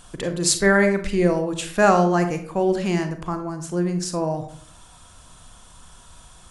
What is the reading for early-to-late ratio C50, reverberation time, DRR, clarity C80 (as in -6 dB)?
10.0 dB, 0.55 s, 7.0 dB, 13.0 dB